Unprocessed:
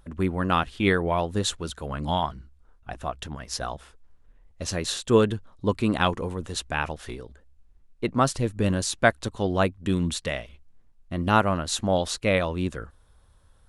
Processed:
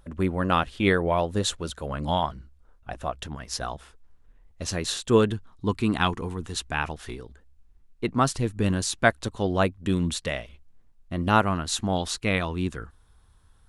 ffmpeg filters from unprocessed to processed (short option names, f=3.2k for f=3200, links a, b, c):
-af "asetnsamples=n=441:p=0,asendcmd='3.26 equalizer g -3;5.32 equalizer g -14;6.67 equalizer g -7;9.06 equalizer g -0.5;11.44 equalizer g -11',equalizer=f=560:t=o:w=0.31:g=4"